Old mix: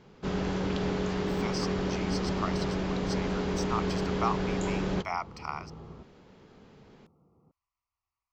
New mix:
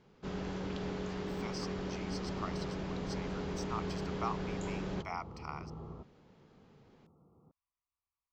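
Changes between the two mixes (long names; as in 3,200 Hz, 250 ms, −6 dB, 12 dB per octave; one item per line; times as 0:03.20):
speech −7.5 dB
first sound −8.5 dB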